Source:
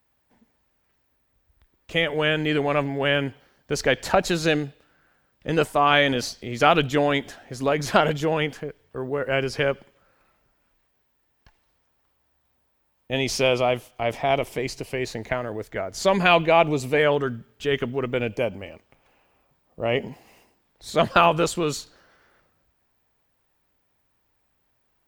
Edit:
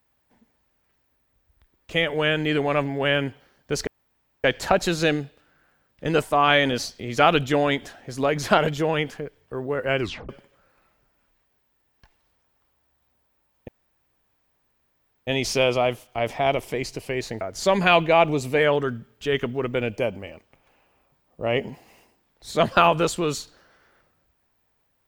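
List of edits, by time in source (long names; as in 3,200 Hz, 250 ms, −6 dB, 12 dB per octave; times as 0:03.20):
0:03.87: splice in room tone 0.57 s
0:09.43: tape stop 0.29 s
0:13.11: splice in room tone 1.59 s
0:15.25–0:15.80: remove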